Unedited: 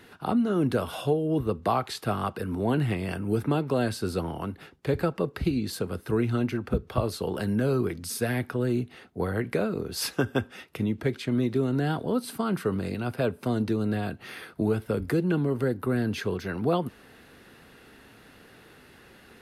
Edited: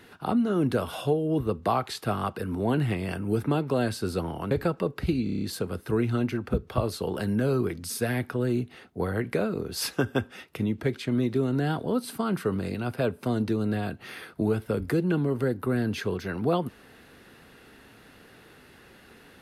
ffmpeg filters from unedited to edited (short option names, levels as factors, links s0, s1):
-filter_complex "[0:a]asplit=8[s0][s1][s2][s3][s4][s5][s6][s7];[s0]atrim=end=4.512[s8];[s1]atrim=start=4.888:end=5.652[s9];[s2]atrim=start=5.618:end=5.652[s10];[s3]atrim=start=5.618:end=5.652[s11];[s4]atrim=start=5.618:end=5.652[s12];[s5]atrim=start=5.618:end=5.652[s13];[s6]atrim=start=5.618:end=5.652[s14];[s7]atrim=start=5.618[s15];[s8][s9]acrossfade=d=0.004:c1=hsin:c2=hsin[s16];[s16][s10]acrossfade=d=0.004:c1=hsin:c2=hsin[s17];[s17][s11]acrossfade=d=0.004:c1=hsin:c2=hsin[s18];[s18][s12]acrossfade=d=0.004:c1=hsin:c2=hsin[s19];[s19][s13]acrossfade=d=0.004:c1=hsin:c2=hsin[s20];[s20][s14]acrossfade=d=0.004:c1=hsin:c2=hsin[s21];[s21][s15]acrossfade=d=0.004:c1=hsin:c2=hsin"